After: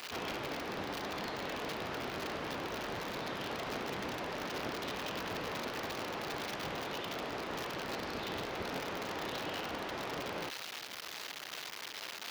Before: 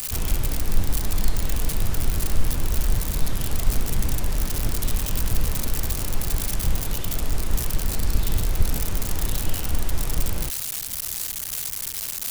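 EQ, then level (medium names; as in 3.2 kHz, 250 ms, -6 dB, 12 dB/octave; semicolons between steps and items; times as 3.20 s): high-pass 390 Hz 12 dB/octave; distance through air 260 m; treble shelf 10 kHz +4.5 dB; +1.0 dB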